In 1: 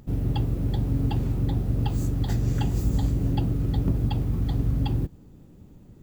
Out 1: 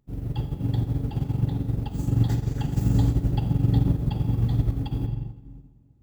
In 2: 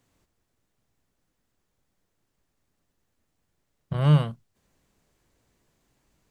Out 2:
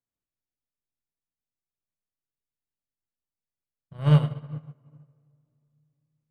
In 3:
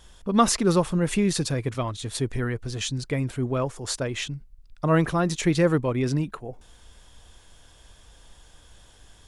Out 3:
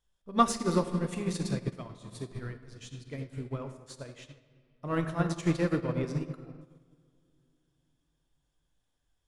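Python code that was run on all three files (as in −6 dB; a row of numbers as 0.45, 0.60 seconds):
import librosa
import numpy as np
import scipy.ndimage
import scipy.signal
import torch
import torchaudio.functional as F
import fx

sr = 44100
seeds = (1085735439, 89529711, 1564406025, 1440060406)

p1 = 10.0 ** (-21.0 / 20.0) * np.tanh(x / 10.0 ** (-21.0 / 20.0))
p2 = x + (p1 * 10.0 ** (-7.5 / 20.0))
p3 = fx.room_shoebox(p2, sr, seeds[0], volume_m3=140.0, walls='hard', distance_m=0.31)
p4 = fx.upward_expand(p3, sr, threshold_db=-31.0, expansion=2.5)
y = librosa.util.normalize(p4) * 10.0 ** (-9 / 20.0)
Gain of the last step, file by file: 0.0, −1.0, −4.5 decibels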